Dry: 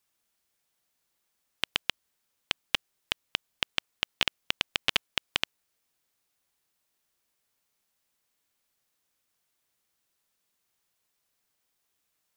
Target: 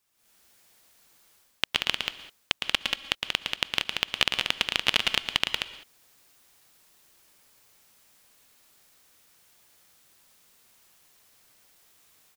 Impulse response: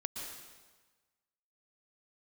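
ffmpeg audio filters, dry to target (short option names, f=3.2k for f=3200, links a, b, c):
-filter_complex "[0:a]asplit=2[a][b];[1:a]atrim=start_sample=2205,afade=t=out:st=0.26:d=0.01,atrim=end_sample=11907[c];[b][c]afir=irnorm=-1:irlink=0,volume=-7dB[d];[a][d]amix=inputs=2:normalize=0,dynaudnorm=f=150:g=3:m=13.5dB,aecho=1:1:110.8|183.7:0.501|0.562,volume=-1dB"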